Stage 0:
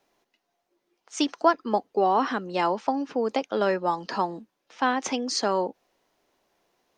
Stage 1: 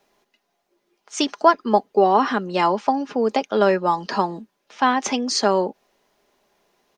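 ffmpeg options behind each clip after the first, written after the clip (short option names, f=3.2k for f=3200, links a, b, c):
-af "aecho=1:1:4.9:0.36,volume=5dB"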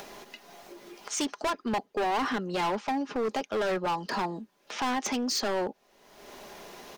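-af "acompressor=mode=upward:threshold=-21dB:ratio=2.5,volume=20.5dB,asoftclip=hard,volume=-20.5dB,volume=-5dB"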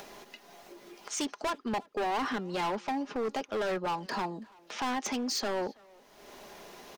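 -filter_complex "[0:a]asplit=2[a][b];[b]adelay=330,highpass=300,lowpass=3.4k,asoftclip=type=hard:threshold=-33.5dB,volume=-19dB[c];[a][c]amix=inputs=2:normalize=0,volume=-3dB"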